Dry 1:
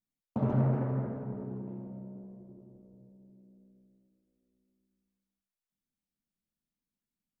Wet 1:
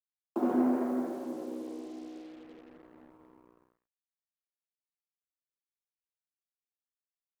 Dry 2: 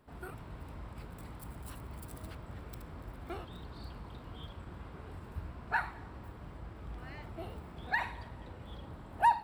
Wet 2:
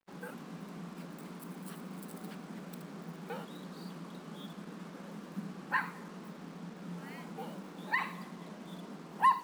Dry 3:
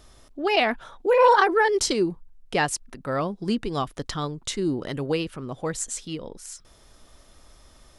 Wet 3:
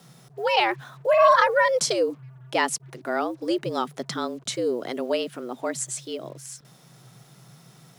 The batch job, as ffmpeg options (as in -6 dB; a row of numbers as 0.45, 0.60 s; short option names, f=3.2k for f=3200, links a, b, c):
-af "afreqshift=120,acrusher=bits=8:mix=0:aa=0.5"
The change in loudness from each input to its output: +0.5, +0.5, 0.0 LU